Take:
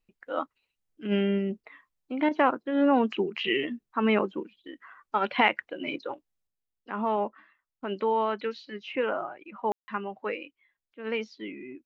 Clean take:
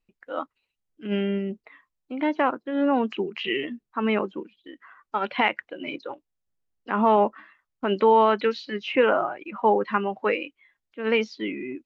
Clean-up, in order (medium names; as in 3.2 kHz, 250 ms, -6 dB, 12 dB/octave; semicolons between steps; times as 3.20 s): room tone fill 9.72–9.88 s; interpolate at 2.29 s, 20 ms; trim 0 dB, from 6.47 s +8.5 dB